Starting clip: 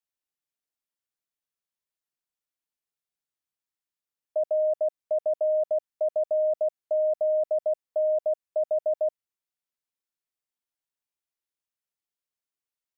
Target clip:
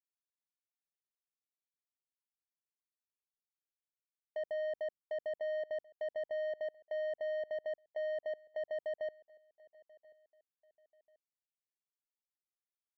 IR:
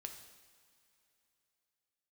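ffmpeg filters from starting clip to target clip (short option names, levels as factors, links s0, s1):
-filter_complex "[0:a]agate=range=0.0224:threshold=0.0282:ratio=3:detection=peak,alimiter=level_in=1.78:limit=0.0631:level=0:latency=1:release=83,volume=0.562,asoftclip=type=tanh:threshold=0.0141,adynamicsmooth=sensitivity=3:basefreq=540,asplit=2[s0][s1];[s1]aecho=0:1:1036|2072:0.0668|0.0241[s2];[s0][s2]amix=inputs=2:normalize=0,volume=1.68"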